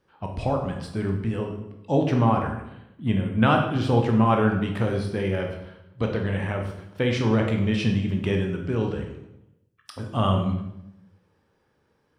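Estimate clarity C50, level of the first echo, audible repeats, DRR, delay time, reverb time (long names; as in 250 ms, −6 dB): 5.5 dB, no echo audible, no echo audible, 2.0 dB, no echo audible, 0.85 s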